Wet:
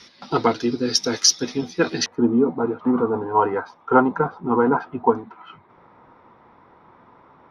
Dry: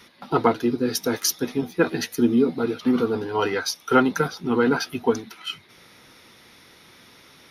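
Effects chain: resonant low-pass 5.4 kHz, resonance Q 3.3, from 2.06 s 990 Hz

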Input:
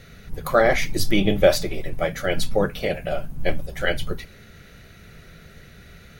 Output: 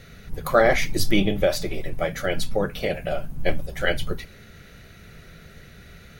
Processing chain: 1.23–3.46 s: compression 2:1, threshold -20 dBFS, peak gain reduction 6 dB

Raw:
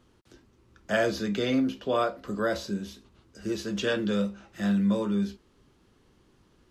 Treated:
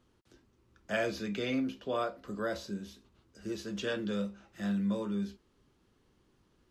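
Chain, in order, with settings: 0.91–1.71 s: peaking EQ 2.4 kHz +7 dB 0.32 oct; trim -7 dB

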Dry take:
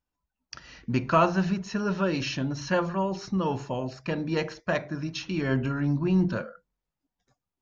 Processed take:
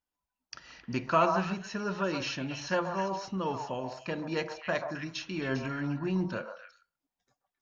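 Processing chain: bass shelf 200 Hz -9 dB; repeats whose band climbs or falls 133 ms, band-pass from 860 Hz, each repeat 1.4 oct, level -3 dB; trim -3 dB

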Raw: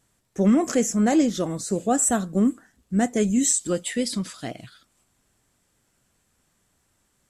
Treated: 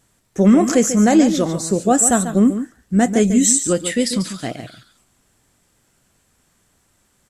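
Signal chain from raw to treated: delay 142 ms -10.5 dB; trim +6.5 dB

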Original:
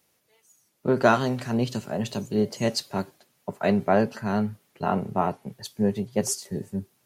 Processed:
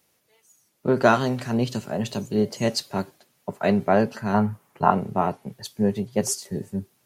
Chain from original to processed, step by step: 4.34–4.91 s: graphic EQ 125/1000/4000 Hz +5/+11/-6 dB; trim +1.5 dB

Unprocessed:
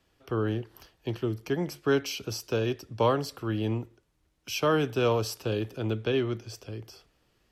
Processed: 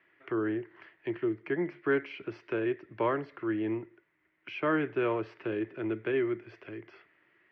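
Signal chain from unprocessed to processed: cabinet simulation 230–2100 Hz, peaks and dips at 240 Hz -9 dB, 340 Hz +6 dB, 490 Hz -9 dB, 790 Hz -9 dB, 1.2 kHz -4 dB, 2 kHz +10 dB; tape noise reduction on one side only encoder only

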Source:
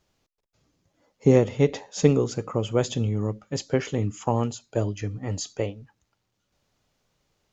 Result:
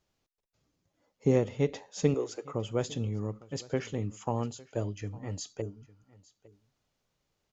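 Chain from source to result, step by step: 2.14–2.54 s: steep high-pass 310 Hz; 5.64–6.08 s: spectral replace 470–5400 Hz after; delay 856 ms -22 dB; trim -7.5 dB

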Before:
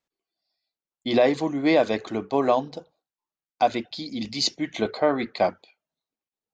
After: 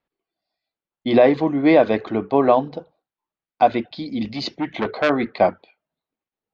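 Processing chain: distance through air 310 m; 4.29–5.10 s: transformer saturation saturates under 1.6 kHz; trim +6.5 dB

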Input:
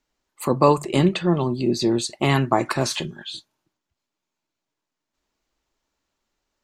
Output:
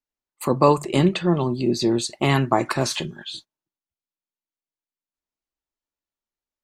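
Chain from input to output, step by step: gate -41 dBFS, range -18 dB

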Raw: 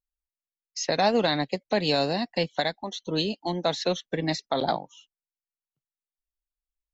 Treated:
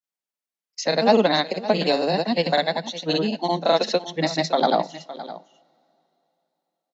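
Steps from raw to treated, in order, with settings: rippled Chebyshev high-pass 160 Hz, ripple 3 dB; granulator, pitch spread up and down by 0 st; delay 563 ms -15.5 dB; two-slope reverb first 0.33 s, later 3.4 s, from -18 dB, DRR 19.5 dB; trim +7.5 dB

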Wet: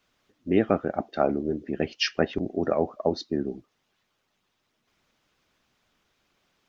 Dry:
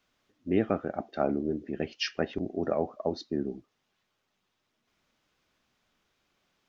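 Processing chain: harmonic-percussive split percussive +6 dB

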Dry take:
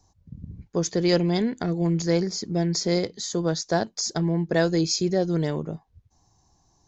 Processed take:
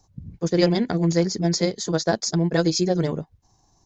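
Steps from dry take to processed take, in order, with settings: granular stretch 0.56×, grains 91 ms; trim +3.5 dB

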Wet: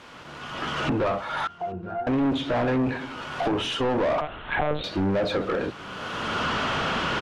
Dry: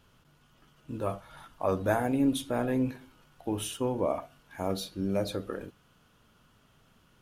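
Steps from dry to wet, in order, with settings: octave divider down 1 oct, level -5 dB; recorder AGC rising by 31 dB/s; low-pass that closes with the level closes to 2.2 kHz, closed at -22.5 dBFS; added noise pink -61 dBFS; 1.47–2.07 s: pitch-class resonator F, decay 0.37 s; overdrive pedal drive 30 dB, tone 2.4 kHz, clips at -11 dBFS; distance through air 59 m; delay 829 ms -23.5 dB; 4.21–4.84 s: monotone LPC vocoder at 8 kHz 150 Hz; trim -4.5 dB

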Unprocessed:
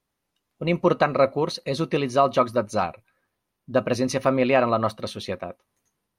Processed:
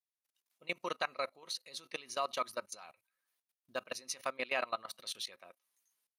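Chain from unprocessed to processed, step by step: treble shelf 6.1 kHz -6.5 dB; level held to a coarse grid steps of 20 dB; differentiator; trim +6 dB

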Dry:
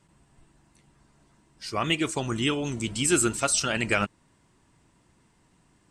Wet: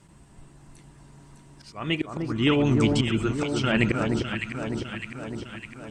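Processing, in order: bass shelf 400 Hz +4 dB; low-pass that closes with the level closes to 2.9 kHz, closed at -22.5 dBFS; slow attack 414 ms; treble shelf 8.7 kHz +4.5 dB; on a send: echo whose repeats swap between lows and highs 303 ms, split 1.4 kHz, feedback 77%, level -3 dB; on the sum: trim +5.5 dB

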